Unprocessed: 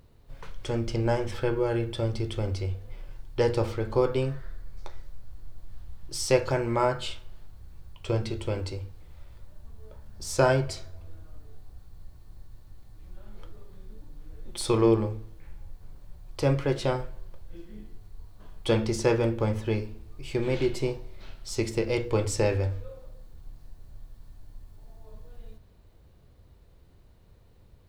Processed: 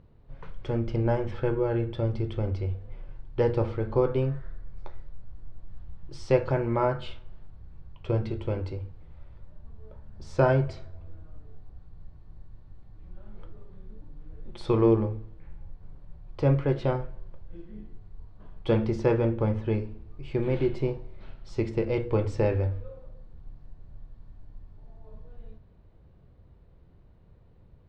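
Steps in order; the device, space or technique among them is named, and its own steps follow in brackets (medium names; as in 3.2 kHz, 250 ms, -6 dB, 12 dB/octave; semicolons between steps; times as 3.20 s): phone in a pocket (low-pass 3.7 kHz 12 dB/octave; peaking EQ 160 Hz +4 dB 0.77 oct; treble shelf 2.2 kHz -9 dB)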